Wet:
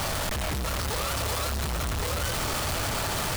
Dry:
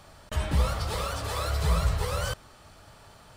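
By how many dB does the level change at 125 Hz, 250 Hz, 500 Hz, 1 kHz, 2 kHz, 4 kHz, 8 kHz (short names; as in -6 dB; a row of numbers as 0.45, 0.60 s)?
-2.0, +3.0, +2.0, +3.5, +6.5, +6.0, +9.0 dB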